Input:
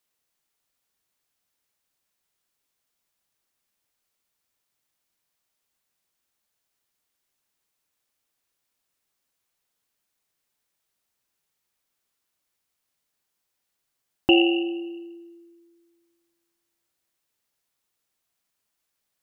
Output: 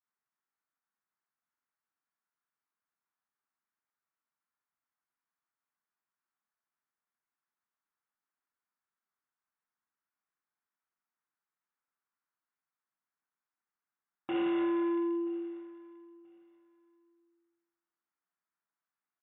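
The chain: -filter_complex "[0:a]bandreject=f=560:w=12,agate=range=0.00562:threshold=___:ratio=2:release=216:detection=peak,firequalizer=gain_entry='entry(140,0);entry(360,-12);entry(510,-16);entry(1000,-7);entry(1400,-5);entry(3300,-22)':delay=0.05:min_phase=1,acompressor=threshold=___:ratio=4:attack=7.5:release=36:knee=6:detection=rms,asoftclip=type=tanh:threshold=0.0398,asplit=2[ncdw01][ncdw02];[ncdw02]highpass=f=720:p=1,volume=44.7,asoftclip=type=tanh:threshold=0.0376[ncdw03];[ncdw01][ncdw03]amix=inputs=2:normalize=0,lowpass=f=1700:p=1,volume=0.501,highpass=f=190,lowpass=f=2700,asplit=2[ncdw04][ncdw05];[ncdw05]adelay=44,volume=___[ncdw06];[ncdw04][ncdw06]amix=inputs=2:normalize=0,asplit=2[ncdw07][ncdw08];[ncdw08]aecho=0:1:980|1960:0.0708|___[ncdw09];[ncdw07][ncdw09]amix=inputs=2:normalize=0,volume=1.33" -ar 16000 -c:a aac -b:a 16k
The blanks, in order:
0.00316, 0.0112, 0.447, 0.0127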